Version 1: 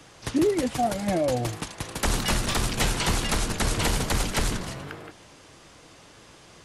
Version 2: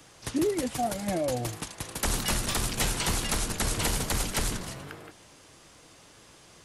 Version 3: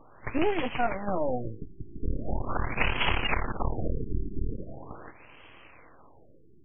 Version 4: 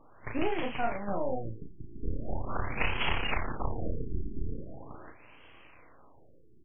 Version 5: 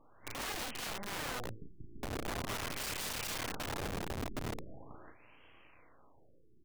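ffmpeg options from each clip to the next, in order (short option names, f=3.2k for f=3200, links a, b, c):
-af "highshelf=f=7.9k:g=9.5,volume=-4.5dB"
-af "equalizer=f=160:t=o:w=0.67:g=-5,equalizer=f=1k:t=o:w=0.67:g=4,equalizer=f=2.5k:t=o:w=0.67:g=10,aeval=exprs='max(val(0),0)':c=same,afftfilt=real='re*lt(b*sr/1024,400*pow(3400/400,0.5+0.5*sin(2*PI*0.41*pts/sr)))':imag='im*lt(b*sr/1024,400*pow(3400/400,0.5+0.5*sin(2*PI*0.41*pts/sr)))':win_size=1024:overlap=0.75,volume=5dB"
-filter_complex "[0:a]asplit=2[a][b];[b]adelay=35,volume=-4dB[c];[a][c]amix=inputs=2:normalize=0,volume=-5dB"
-af "aeval=exprs='(mod(25.1*val(0)+1,2)-1)/25.1':c=same,volume=-6dB"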